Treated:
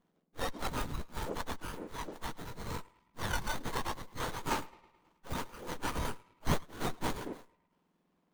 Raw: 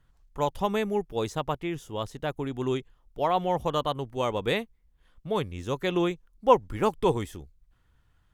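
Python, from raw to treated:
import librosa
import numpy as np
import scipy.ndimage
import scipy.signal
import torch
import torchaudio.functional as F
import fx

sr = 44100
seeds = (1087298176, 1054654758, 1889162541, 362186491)

y = fx.octave_mirror(x, sr, pivot_hz=1800.0)
y = fx.echo_banded(y, sr, ms=107, feedback_pct=58, hz=1100.0, wet_db=-19)
y = fx.running_max(y, sr, window=17)
y = F.gain(torch.from_numpy(y), 1.0).numpy()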